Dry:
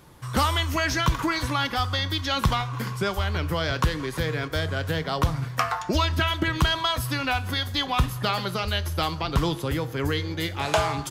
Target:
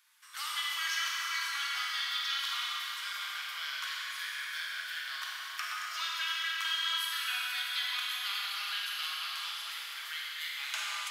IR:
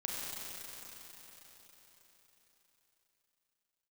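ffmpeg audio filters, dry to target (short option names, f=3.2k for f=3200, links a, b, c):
-filter_complex "[0:a]highpass=f=1.5k:w=0.5412,highpass=f=1.5k:w=1.3066[a];[1:a]atrim=start_sample=2205[b];[a][b]afir=irnorm=-1:irlink=0,volume=-7dB"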